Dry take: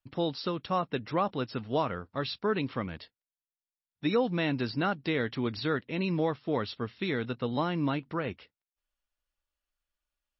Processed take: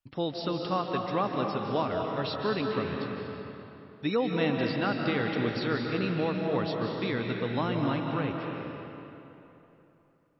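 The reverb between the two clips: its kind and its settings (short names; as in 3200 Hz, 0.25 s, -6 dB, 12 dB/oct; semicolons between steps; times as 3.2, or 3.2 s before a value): digital reverb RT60 3.2 s, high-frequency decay 0.7×, pre-delay 0.115 s, DRR 1 dB; gain -1 dB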